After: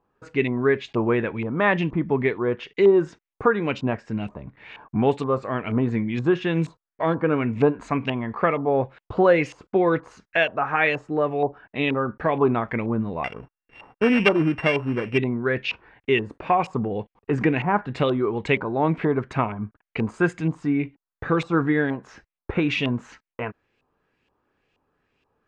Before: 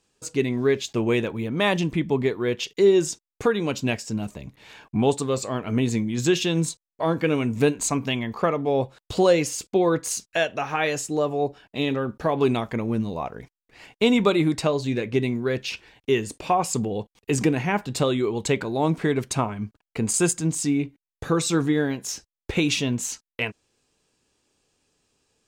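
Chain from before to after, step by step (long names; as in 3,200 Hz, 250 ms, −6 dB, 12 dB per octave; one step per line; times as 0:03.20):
0:13.24–0:15.18: samples sorted by size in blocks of 16 samples
auto-filter low-pass saw up 2.1 Hz 950–2,700 Hz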